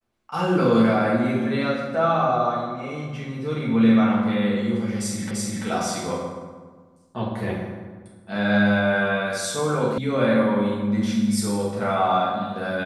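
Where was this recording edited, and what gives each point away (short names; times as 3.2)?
5.31 repeat of the last 0.34 s
9.98 sound cut off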